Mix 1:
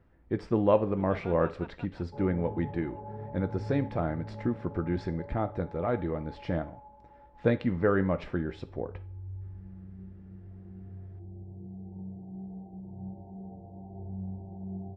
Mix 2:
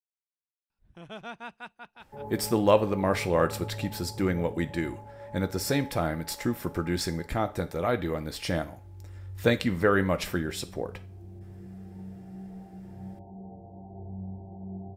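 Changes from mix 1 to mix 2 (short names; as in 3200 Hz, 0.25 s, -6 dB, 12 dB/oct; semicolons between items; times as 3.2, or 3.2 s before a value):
speech: entry +2.00 s; second sound: send off; master: remove tape spacing loss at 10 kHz 43 dB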